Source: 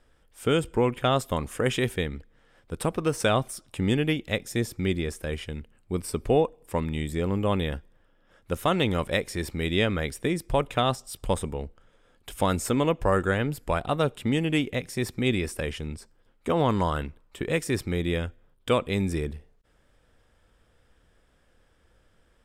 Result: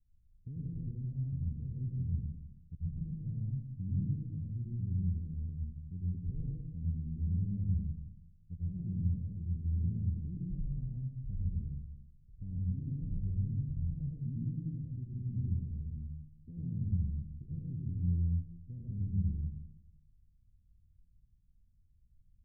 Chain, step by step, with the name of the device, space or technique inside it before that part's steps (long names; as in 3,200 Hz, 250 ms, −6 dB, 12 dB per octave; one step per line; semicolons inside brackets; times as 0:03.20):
club heard from the street (brickwall limiter −15 dBFS, peak gain reduction 3.5 dB; low-pass filter 160 Hz 24 dB per octave; convolution reverb RT60 0.85 s, pre-delay 81 ms, DRR −4.5 dB)
0:02.79–0:03.32: comb filter 1.3 ms, depth 48%
level −8.5 dB